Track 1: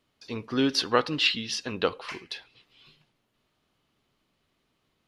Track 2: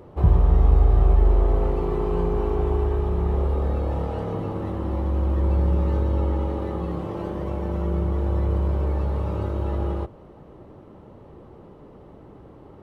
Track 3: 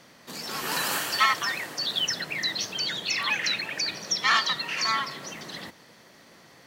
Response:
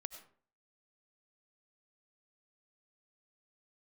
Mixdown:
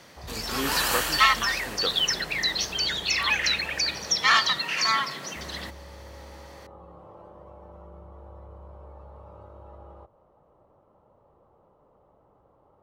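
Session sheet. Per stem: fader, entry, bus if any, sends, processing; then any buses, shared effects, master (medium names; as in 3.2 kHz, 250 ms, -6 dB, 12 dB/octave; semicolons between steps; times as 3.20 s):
-5.5 dB, 0.00 s, no send, none
-19.0 dB, 0.00 s, muted 4.59–5.36 s, no send, high-order bell 820 Hz +10 dB; compression 2:1, threshold -26 dBFS, peak gain reduction 8.5 dB
+2.5 dB, 0.00 s, no send, none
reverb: none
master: peaking EQ 270 Hz -2.5 dB 1.6 oct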